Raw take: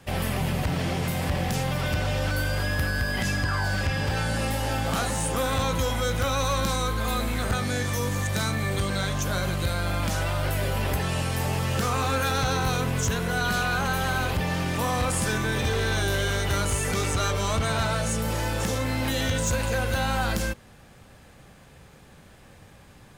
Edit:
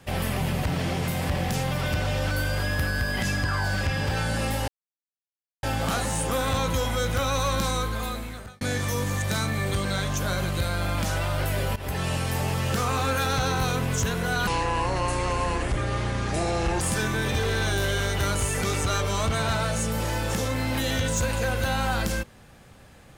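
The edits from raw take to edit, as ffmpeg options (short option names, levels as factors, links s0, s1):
-filter_complex "[0:a]asplit=6[s0][s1][s2][s3][s4][s5];[s0]atrim=end=4.68,asetpts=PTS-STARTPTS,afade=t=out:st=4.676:d=0.004:c=hsin,apad=pad_dur=0.95[s6];[s1]atrim=start=4.68:end=7.66,asetpts=PTS-STARTPTS,afade=t=in:d=0.004:c=hsin,afade=t=out:st=2.13:d=0.85[s7];[s2]atrim=start=7.66:end=10.81,asetpts=PTS-STARTPTS,afade=t=in:d=0.004:c=hsin,afade=t=out:st=3.146:d=0.004:c=hsin:silence=0.11885[s8];[s3]atrim=start=10.81:end=13.524,asetpts=PTS-STARTPTS,afade=t=in:d=0.34:c=qsin:silence=0.11885[s9];[s4]atrim=start=13.52:end=15.11,asetpts=PTS-STARTPTS,asetrate=29988,aresample=44100,atrim=end_sample=103116,asetpts=PTS-STARTPTS[s10];[s5]atrim=start=15.106[s11];[s6][s7][s8][s9]concat=n=4:v=0:a=1[s12];[s12][s10]acrossfade=d=0.004:c1=hsin:c2=hsin[s13];[s13][s11]acrossfade=d=0.004:c1=hsin:c2=hsin"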